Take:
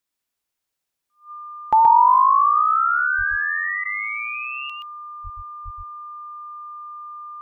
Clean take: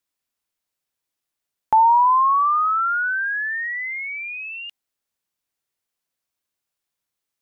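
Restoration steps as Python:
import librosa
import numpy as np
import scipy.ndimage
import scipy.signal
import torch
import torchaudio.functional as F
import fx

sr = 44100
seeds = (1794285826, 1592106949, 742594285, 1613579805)

y = fx.notch(x, sr, hz=1200.0, q=30.0)
y = fx.fix_deplosive(y, sr, at_s=(3.17, 5.23, 5.64))
y = fx.fix_interpolate(y, sr, at_s=(3.84,), length_ms=12.0)
y = fx.fix_echo_inverse(y, sr, delay_ms=125, level_db=-3.5)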